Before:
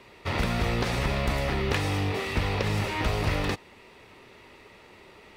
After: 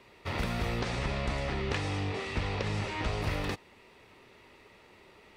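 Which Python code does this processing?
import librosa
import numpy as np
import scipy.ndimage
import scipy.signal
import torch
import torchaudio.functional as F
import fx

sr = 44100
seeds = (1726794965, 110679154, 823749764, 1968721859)

y = fx.lowpass(x, sr, hz=8800.0, slope=24, at=(0.8, 3.22))
y = F.gain(torch.from_numpy(y), -5.5).numpy()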